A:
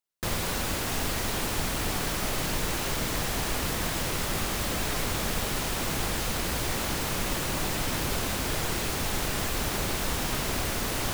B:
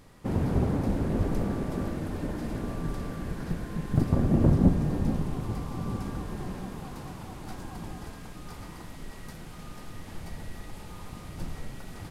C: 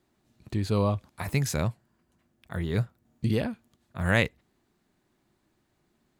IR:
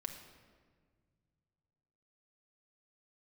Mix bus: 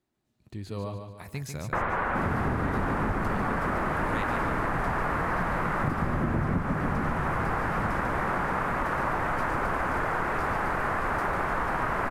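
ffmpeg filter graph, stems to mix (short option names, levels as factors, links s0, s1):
-filter_complex "[0:a]lowpass=f=1900:w=0.5412,lowpass=f=1900:w=1.3066,equalizer=f=1200:t=o:w=2.4:g=14,adelay=1500,volume=0.841[s0];[1:a]adelay=1900,volume=1.26,asplit=2[s1][s2];[s2]volume=0.501[s3];[2:a]volume=0.335,asplit=2[s4][s5];[s5]volume=0.473[s6];[s3][s6]amix=inputs=2:normalize=0,aecho=0:1:145|290|435|580|725|870:1|0.45|0.202|0.0911|0.041|0.0185[s7];[s0][s1][s4][s7]amix=inputs=4:normalize=0,acompressor=threshold=0.0631:ratio=6"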